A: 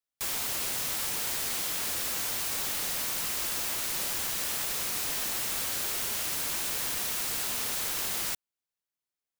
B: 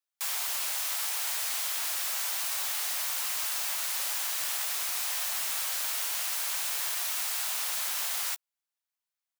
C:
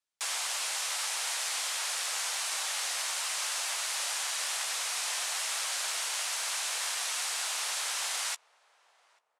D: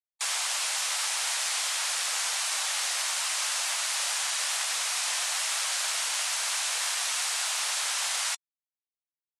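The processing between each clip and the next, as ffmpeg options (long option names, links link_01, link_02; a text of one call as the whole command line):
ffmpeg -i in.wav -filter_complex "[0:a]highpass=frequency=660:width=0.5412,highpass=frequency=660:width=1.3066,asplit=2[link_01][link_02];[link_02]adelay=14,volume=-13.5dB[link_03];[link_01][link_03]amix=inputs=2:normalize=0" out.wav
ffmpeg -i in.wav -filter_complex "[0:a]lowpass=frequency=9700:width=0.5412,lowpass=frequency=9700:width=1.3066,asplit=2[link_01][link_02];[link_02]adelay=841,lowpass=frequency=850:poles=1,volume=-22dB,asplit=2[link_03][link_04];[link_04]adelay=841,lowpass=frequency=850:poles=1,volume=0.44,asplit=2[link_05][link_06];[link_06]adelay=841,lowpass=frequency=850:poles=1,volume=0.44[link_07];[link_01][link_03][link_05][link_07]amix=inputs=4:normalize=0,volume=2dB" out.wav
ffmpeg -i in.wav -af "afftfilt=real='re*gte(hypot(re,im),0.00631)':imag='im*gte(hypot(re,im),0.00631)':win_size=1024:overlap=0.75,lowshelf=frequency=310:gain=-9,volume=4dB" out.wav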